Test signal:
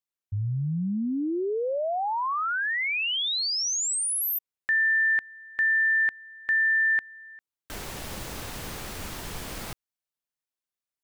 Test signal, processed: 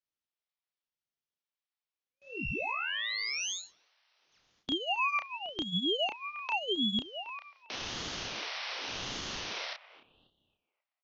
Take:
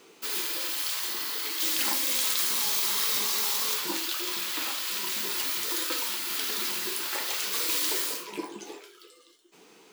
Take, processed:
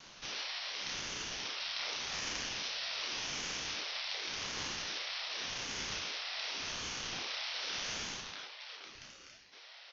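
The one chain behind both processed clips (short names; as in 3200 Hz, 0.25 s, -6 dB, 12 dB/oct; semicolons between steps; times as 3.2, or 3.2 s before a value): per-bin compression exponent 0.6; steep high-pass 1200 Hz 96 dB/oct; gate with hold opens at -46 dBFS, closes at -51 dBFS, hold 0.174 s, range -28 dB; analogue delay 0.269 s, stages 4096, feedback 33%, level -16.5 dB; soft clip -17.5 dBFS; wow and flutter 24 cents; doubler 31 ms -4 dB; downsampling 11025 Hz; ring modulator with a swept carrier 1100 Hz, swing 45%, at 0.87 Hz; gain -6 dB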